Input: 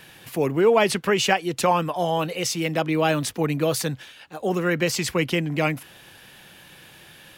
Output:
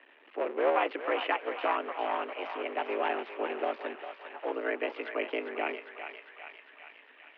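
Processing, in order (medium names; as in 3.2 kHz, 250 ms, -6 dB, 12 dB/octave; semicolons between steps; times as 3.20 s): cycle switcher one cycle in 3, muted; on a send: thinning echo 402 ms, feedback 67%, high-pass 640 Hz, level -7 dB; on the sum: mistuned SSB +97 Hz 210–2700 Hz; trim -7.5 dB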